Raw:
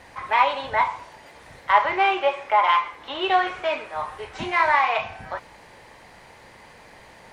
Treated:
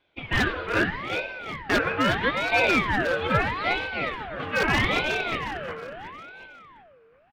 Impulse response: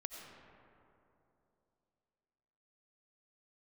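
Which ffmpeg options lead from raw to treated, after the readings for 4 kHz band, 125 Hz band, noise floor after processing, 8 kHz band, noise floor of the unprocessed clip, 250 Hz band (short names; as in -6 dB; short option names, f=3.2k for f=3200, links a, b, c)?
+1.5 dB, +14.5 dB, -58 dBFS, n/a, -49 dBFS, +8.5 dB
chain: -filter_complex "[0:a]lowpass=1.9k,agate=range=-19dB:threshold=-38dB:ratio=16:detection=peak,equalizer=f=230:w=0.35:g=-12.5,aeval=exprs='(tanh(1.78*val(0)+0.65)-tanh(0.65))/1.78':c=same,acrossover=split=620[a][b];[b]aeval=exprs='0.0668*(abs(mod(val(0)/0.0668+3,4)-2)-1)':c=same[c];[a][c]amix=inputs=2:normalize=0,aecho=1:1:361|722|1083|1444|1805:0.501|0.226|0.101|0.0457|0.0206,asplit=2[d][e];[1:a]atrim=start_sample=2205,lowpass=3.5k[f];[e][f]afir=irnorm=-1:irlink=0,volume=-5.5dB[g];[d][g]amix=inputs=2:normalize=0,aeval=exprs='val(0)*sin(2*PI*1000*n/s+1000*0.55/0.78*sin(2*PI*0.78*n/s))':c=same,volume=6.5dB"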